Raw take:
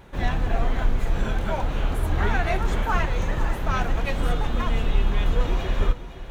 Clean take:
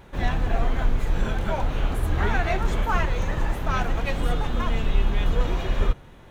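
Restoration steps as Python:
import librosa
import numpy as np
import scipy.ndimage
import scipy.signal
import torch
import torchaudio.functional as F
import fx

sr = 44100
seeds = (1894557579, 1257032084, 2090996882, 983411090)

y = fx.fix_echo_inverse(x, sr, delay_ms=513, level_db=-13.0)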